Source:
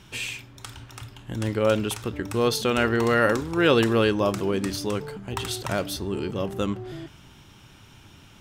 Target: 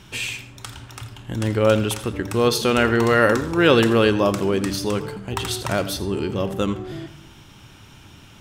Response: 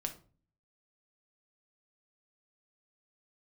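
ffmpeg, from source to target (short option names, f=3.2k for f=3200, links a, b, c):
-filter_complex "[0:a]asplit=2[a][b];[1:a]atrim=start_sample=2205,asetrate=22050,aresample=44100,adelay=83[c];[b][c]afir=irnorm=-1:irlink=0,volume=-17.5dB[d];[a][d]amix=inputs=2:normalize=0,volume=4dB"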